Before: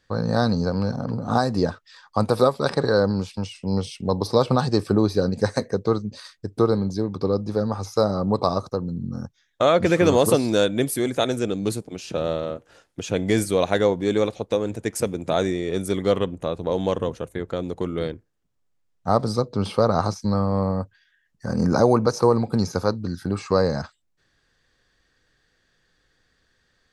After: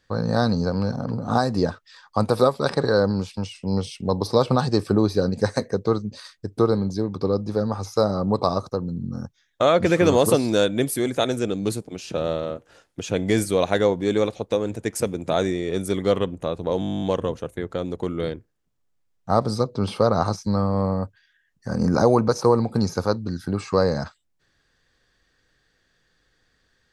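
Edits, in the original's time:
16.8 stutter 0.02 s, 12 plays

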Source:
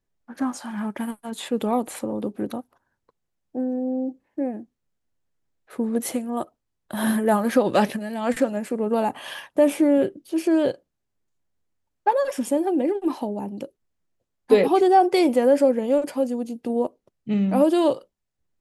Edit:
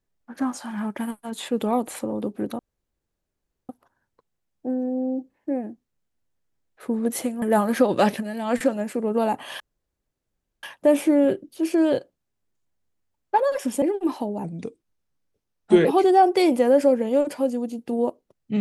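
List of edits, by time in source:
2.59 insert room tone 1.10 s
6.32–7.18 cut
9.36 insert room tone 1.03 s
12.55–12.83 cut
13.45–14.62 speed 83%

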